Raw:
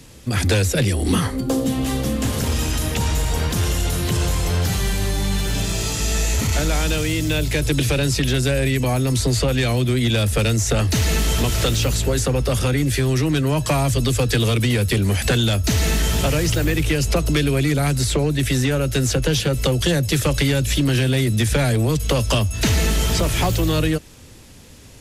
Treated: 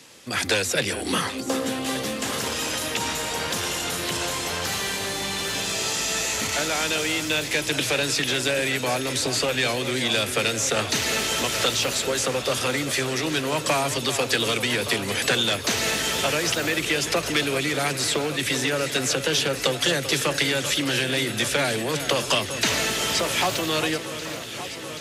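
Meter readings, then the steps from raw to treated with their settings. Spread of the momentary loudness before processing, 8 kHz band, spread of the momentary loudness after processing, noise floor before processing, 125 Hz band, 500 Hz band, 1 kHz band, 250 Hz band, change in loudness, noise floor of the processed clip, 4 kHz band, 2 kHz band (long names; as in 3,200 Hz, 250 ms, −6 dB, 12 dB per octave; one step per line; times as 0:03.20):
3 LU, −0.5 dB, 4 LU, −41 dBFS, −16.0 dB, −2.5 dB, +0.5 dB, −8.0 dB, −3.5 dB, −32 dBFS, +1.5 dB, +2.0 dB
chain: meter weighting curve A
delay that swaps between a low-pass and a high-pass 390 ms, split 2,400 Hz, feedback 88%, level −11 dB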